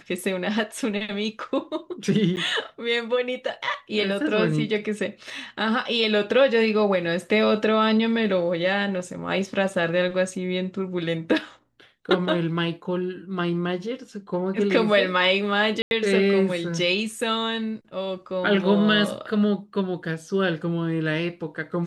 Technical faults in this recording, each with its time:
0:02.36–0:02.37: drop-out 9.3 ms
0:15.82–0:15.91: drop-out 91 ms

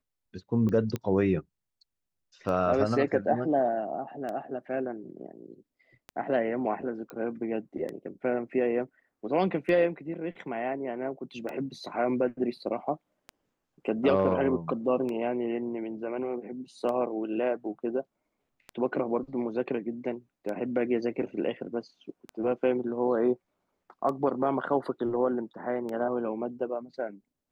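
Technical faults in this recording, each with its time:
scratch tick 33 1/3 rpm −23 dBFS
0:00.96: click −19 dBFS
0:07.10: click −26 dBFS

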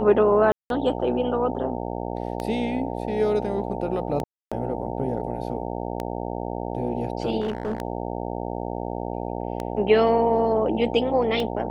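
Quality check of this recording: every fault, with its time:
mains buzz 60 Hz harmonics 15 −30 dBFS
scratch tick 33 1/3 rpm −15 dBFS
0:00.52–0:00.70: drop-out 182 ms
0:04.24–0:04.52: drop-out 276 ms
0:07.40–0:07.82: clipping −22.5 dBFS

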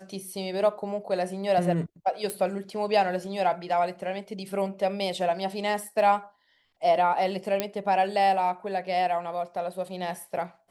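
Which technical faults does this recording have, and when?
0:02.30: click −16 dBFS
0:07.60: click −10 dBFS

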